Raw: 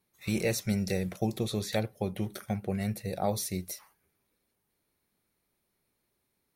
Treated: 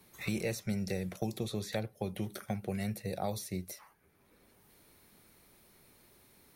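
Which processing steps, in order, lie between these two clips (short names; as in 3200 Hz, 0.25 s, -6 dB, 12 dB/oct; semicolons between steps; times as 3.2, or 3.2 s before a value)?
three-band squash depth 70%; gain -5 dB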